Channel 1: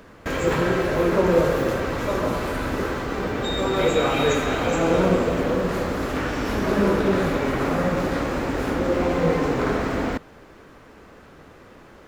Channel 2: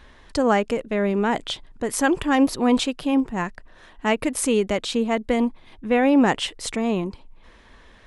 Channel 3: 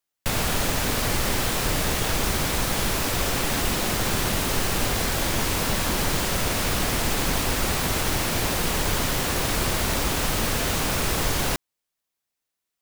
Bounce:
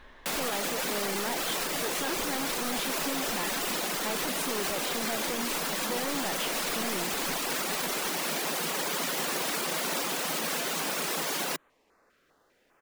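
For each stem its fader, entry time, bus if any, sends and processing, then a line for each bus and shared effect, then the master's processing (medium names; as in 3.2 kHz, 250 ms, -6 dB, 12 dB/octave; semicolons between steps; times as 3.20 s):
-13.0 dB, 0.90 s, no send, bass shelf 500 Hz -10 dB; step-sequenced notch 5 Hz 870–5100 Hz
+0.5 dB, 0.00 s, no send, treble shelf 4.4 kHz -11 dB; saturation -24 dBFS, distortion -7 dB
+2.5 dB, 0.00 s, no send, elliptic high-pass 160 Hz; reverb removal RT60 0.63 s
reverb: none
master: peaking EQ 83 Hz -10 dB 3 oct; peak limiter -21.5 dBFS, peak gain reduction 9.5 dB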